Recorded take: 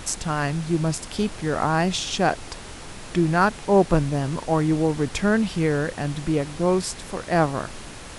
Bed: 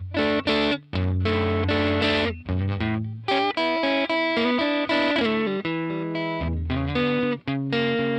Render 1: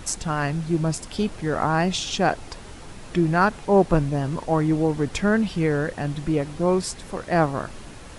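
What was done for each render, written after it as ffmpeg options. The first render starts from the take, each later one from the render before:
ffmpeg -i in.wav -af "afftdn=noise_reduction=6:noise_floor=-39" out.wav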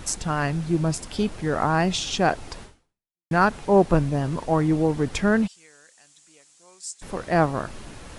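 ffmpeg -i in.wav -filter_complex "[0:a]asplit=3[link_01][link_02][link_03];[link_01]afade=type=out:start_time=5.46:duration=0.02[link_04];[link_02]bandpass=frequency=7400:width_type=q:width=2.9,afade=type=in:start_time=5.46:duration=0.02,afade=type=out:start_time=7.01:duration=0.02[link_05];[link_03]afade=type=in:start_time=7.01:duration=0.02[link_06];[link_04][link_05][link_06]amix=inputs=3:normalize=0,asplit=2[link_07][link_08];[link_07]atrim=end=3.31,asetpts=PTS-STARTPTS,afade=type=out:start_time=2.63:duration=0.68:curve=exp[link_09];[link_08]atrim=start=3.31,asetpts=PTS-STARTPTS,afade=type=in:duration=0.004:curve=hsin[link_10];[link_09][link_10]concat=n=2:v=0:a=1" out.wav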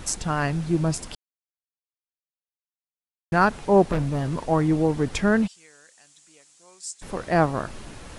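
ffmpeg -i in.wav -filter_complex "[0:a]asettb=1/sr,asplit=3[link_01][link_02][link_03];[link_01]atrim=end=3.924[link_04];[link_02]atrim=start=3.92:end=4.49,asetpts=PTS-STARTPTS,afade=type=in:duration=0.004:curve=qsin,afade=type=out:start_time=0.566:duration=0.004:curve=qsin,asoftclip=type=hard:threshold=-20dB[link_05];[link_03]atrim=start=4.486[link_06];[link_04][link_05]acrossfade=duration=0.004:curve1=hsin:curve2=qsin[link_07];[link_07][link_06]acrossfade=duration=0.004:curve1=qsin:curve2=hsin,asplit=3[link_08][link_09][link_10];[link_08]atrim=end=1.15,asetpts=PTS-STARTPTS,afade=type=out:start_time=1.146:duration=0.004:curve=hsin[link_11];[link_09]atrim=start=1.15:end=3.32,asetpts=PTS-STARTPTS,volume=0[link_12];[link_10]atrim=start=3.32,asetpts=PTS-STARTPTS,afade=type=in:duration=0.004:curve=hsin[link_13];[link_11][link_12][link_13]concat=n=3:v=0:a=1" out.wav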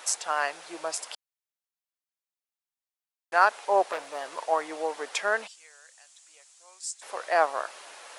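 ffmpeg -i in.wav -af "highpass=frequency=570:width=0.5412,highpass=frequency=570:width=1.3066" out.wav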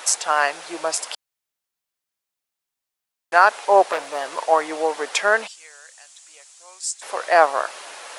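ffmpeg -i in.wav -af "volume=8.5dB,alimiter=limit=-1dB:level=0:latency=1" out.wav

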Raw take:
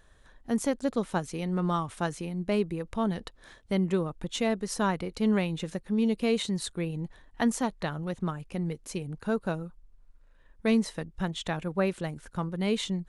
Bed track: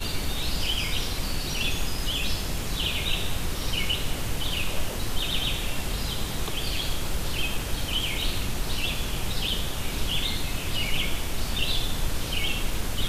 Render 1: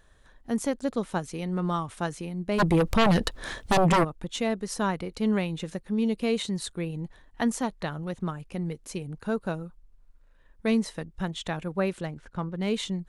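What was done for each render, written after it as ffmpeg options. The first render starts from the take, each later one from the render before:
ffmpeg -i in.wav -filter_complex "[0:a]asplit=3[link_01][link_02][link_03];[link_01]afade=type=out:start_time=2.58:duration=0.02[link_04];[link_02]aeval=exprs='0.15*sin(PI/2*3.98*val(0)/0.15)':channel_layout=same,afade=type=in:start_time=2.58:duration=0.02,afade=type=out:start_time=4.03:duration=0.02[link_05];[link_03]afade=type=in:start_time=4.03:duration=0.02[link_06];[link_04][link_05][link_06]amix=inputs=3:normalize=0,asettb=1/sr,asplit=3[link_07][link_08][link_09];[link_07]atrim=end=12.054[link_10];[link_08]atrim=start=12.05:end=12.74,asetpts=PTS-STARTPTS,afade=type=in:duration=0.004:curve=qsin,afade=type=out:start_time=0.686:duration=0.004:curve=qsin,adynamicsmooth=sensitivity=7:basefreq=4700[link_11];[link_09]atrim=start=12.736[link_12];[link_10][link_11]acrossfade=duration=0.004:curve1=hsin:curve2=qsin[link_13];[link_13][link_12]acrossfade=duration=0.004:curve1=qsin:curve2=hsin" out.wav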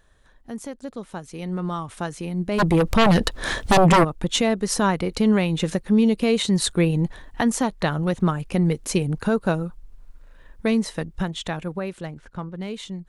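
ffmpeg -i in.wav -af "alimiter=limit=-23dB:level=0:latency=1:release=395,dynaudnorm=framelen=290:gausssize=17:maxgain=13dB" out.wav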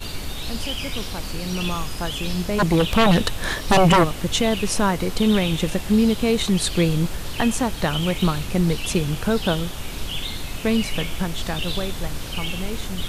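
ffmpeg -i in.wav -i bed.wav -filter_complex "[1:a]volume=-1.5dB[link_01];[0:a][link_01]amix=inputs=2:normalize=0" out.wav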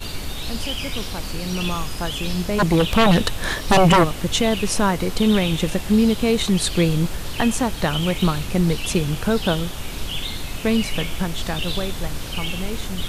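ffmpeg -i in.wav -af "volume=1dB" out.wav

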